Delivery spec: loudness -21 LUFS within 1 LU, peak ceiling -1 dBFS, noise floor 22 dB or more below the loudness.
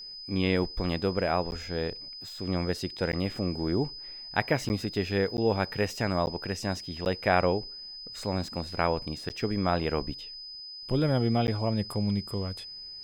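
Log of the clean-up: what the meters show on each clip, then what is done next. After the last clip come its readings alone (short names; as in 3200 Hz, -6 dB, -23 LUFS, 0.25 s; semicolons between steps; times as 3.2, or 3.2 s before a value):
dropouts 8; longest dropout 9.9 ms; steady tone 5000 Hz; tone level -40 dBFS; loudness -30.0 LUFS; peak -7.5 dBFS; loudness target -21.0 LUFS
-> interpolate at 1.51/3.12/4.69/5.37/6.26/7.05/9.29/11.47, 9.9 ms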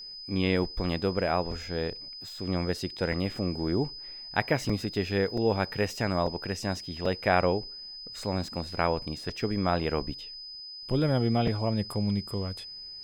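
dropouts 0; steady tone 5000 Hz; tone level -40 dBFS
-> notch 5000 Hz, Q 30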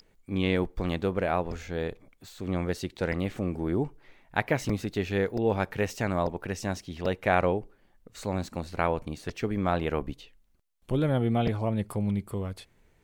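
steady tone none; loudness -30.0 LUFS; peak -8.0 dBFS; loudness target -21.0 LUFS
-> gain +9 dB; limiter -1 dBFS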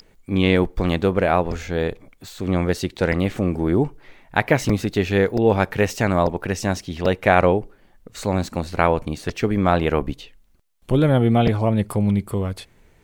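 loudness -21.0 LUFS; peak -1.0 dBFS; noise floor -56 dBFS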